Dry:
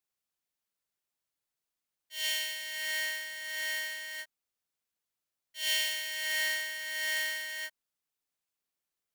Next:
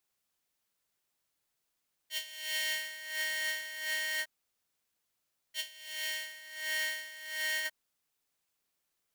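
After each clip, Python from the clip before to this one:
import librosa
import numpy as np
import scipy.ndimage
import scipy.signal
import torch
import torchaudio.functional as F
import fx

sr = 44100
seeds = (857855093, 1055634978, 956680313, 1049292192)

y = fx.over_compress(x, sr, threshold_db=-39.0, ratio=-0.5)
y = y * librosa.db_to_amplitude(2.0)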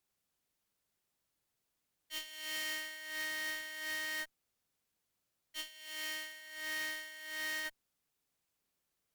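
y = fx.low_shelf(x, sr, hz=460.0, db=7.0)
y = fx.tube_stage(y, sr, drive_db=32.0, bias=0.45)
y = y * librosa.db_to_amplitude(-1.0)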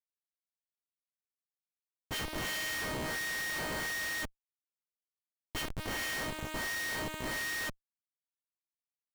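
y = fx.schmitt(x, sr, flips_db=-44.5)
y = y * librosa.db_to_amplitude(9.0)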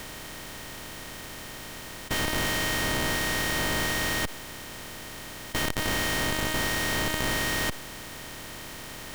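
y = fx.bin_compress(x, sr, power=0.2)
y = y * librosa.db_to_amplitude(3.0)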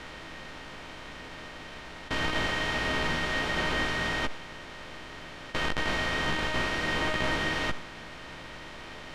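y = fx.envelope_flatten(x, sr, power=0.6)
y = scipy.signal.sosfilt(scipy.signal.butter(2, 3000.0, 'lowpass', fs=sr, output='sos'), y)
y = fx.chorus_voices(y, sr, voices=6, hz=0.58, base_ms=15, depth_ms=3.7, mix_pct=40)
y = y * librosa.db_to_amplitude(3.5)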